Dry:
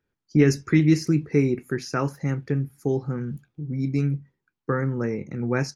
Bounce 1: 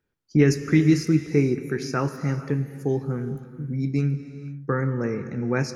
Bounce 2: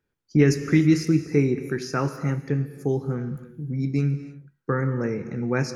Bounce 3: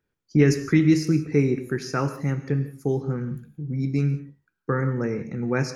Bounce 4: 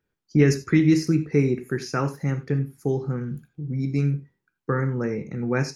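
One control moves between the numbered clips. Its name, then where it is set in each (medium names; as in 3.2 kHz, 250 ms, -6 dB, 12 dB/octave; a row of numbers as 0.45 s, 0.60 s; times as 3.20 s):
gated-style reverb, gate: 530 ms, 340 ms, 200 ms, 110 ms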